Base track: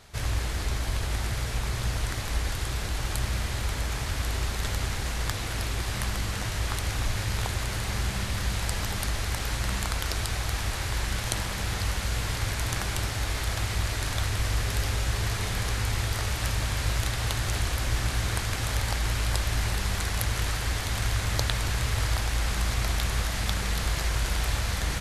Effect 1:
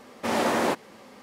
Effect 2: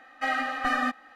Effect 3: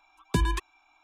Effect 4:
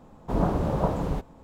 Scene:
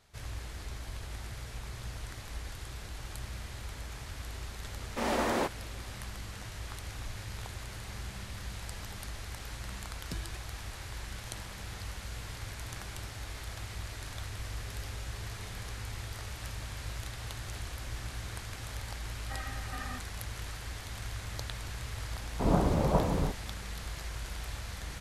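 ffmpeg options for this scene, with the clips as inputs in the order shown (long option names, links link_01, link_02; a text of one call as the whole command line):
ffmpeg -i bed.wav -i cue0.wav -i cue1.wav -i cue2.wav -i cue3.wav -filter_complex "[0:a]volume=-12.5dB[link_01];[3:a]equalizer=frequency=870:width=1.5:gain=-15[link_02];[1:a]atrim=end=1.22,asetpts=PTS-STARTPTS,volume=-6dB,afade=type=in:duration=0.004:curve=hsin,afade=type=out:start_time=1.216:duration=0.004:curve=hsin,adelay=208593S[link_03];[link_02]atrim=end=1.03,asetpts=PTS-STARTPTS,volume=-15dB,afade=type=in:duration=0.004:curve=hsin,afade=type=out:start_time=1.026:duration=0.004:curve=hsin,adelay=9770[link_04];[2:a]atrim=end=1.15,asetpts=PTS-STARTPTS,volume=-16.5dB,afade=type=in:duration=0.004:curve=hsin,afade=type=out:start_time=1.146:duration=0.004:curve=hsin,adelay=841428S[link_05];[4:a]atrim=end=1.43,asetpts=PTS-STARTPTS,volume=-2dB,afade=type=in:duration=0.004:curve=hsin,afade=type=out:start_time=1.426:duration=0.004:curve=hsin,adelay=22110[link_06];[link_01][link_03][link_04][link_05][link_06]amix=inputs=5:normalize=0" out.wav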